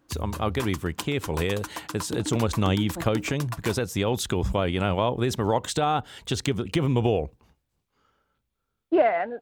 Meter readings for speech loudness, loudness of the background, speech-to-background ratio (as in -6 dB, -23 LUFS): -26.5 LUFS, -37.5 LUFS, 11.0 dB